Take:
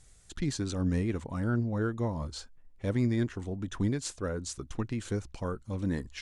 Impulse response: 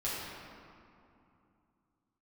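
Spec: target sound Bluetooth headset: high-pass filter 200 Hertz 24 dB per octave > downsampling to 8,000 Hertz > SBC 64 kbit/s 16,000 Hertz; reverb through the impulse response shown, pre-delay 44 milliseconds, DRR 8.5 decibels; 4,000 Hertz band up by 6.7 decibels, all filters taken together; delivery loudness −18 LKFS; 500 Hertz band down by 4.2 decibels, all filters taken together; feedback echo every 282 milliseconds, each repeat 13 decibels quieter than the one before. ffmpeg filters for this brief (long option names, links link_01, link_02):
-filter_complex "[0:a]equalizer=frequency=500:width_type=o:gain=-5.5,equalizer=frequency=4000:width_type=o:gain=8,aecho=1:1:282|564|846:0.224|0.0493|0.0108,asplit=2[link_01][link_02];[1:a]atrim=start_sample=2205,adelay=44[link_03];[link_02][link_03]afir=irnorm=-1:irlink=0,volume=-14dB[link_04];[link_01][link_04]amix=inputs=2:normalize=0,highpass=frequency=200:width=0.5412,highpass=frequency=200:width=1.3066,aresample=8000,aresample=44100,volume=18.5dB" -ar 16000 -c:a sbc -b:a 64k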